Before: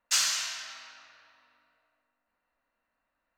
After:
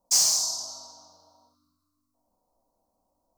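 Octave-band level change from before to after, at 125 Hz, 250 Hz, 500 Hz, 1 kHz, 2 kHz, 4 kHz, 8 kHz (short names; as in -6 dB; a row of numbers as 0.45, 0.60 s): n/a, +10.5 dB, +9.0 dB, -0.5 dB, under -10 dB, +3.5 dB, +7.5 dB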